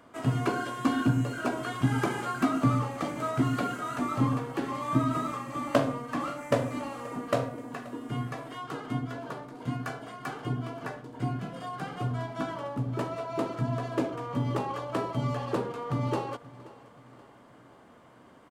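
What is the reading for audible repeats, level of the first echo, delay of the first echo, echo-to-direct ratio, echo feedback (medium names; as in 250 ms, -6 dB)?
3, -20.0 dB, 529 ms, -19.0 dB, 49%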